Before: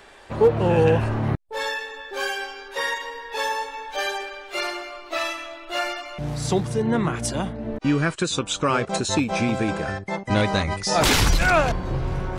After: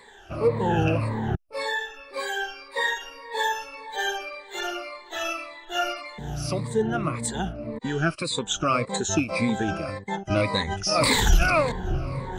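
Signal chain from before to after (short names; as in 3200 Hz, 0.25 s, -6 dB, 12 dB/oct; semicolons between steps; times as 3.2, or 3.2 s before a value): moving spectral ripple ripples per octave 0.98, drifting -1.8 Hz, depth 18 dB; gain -6 dB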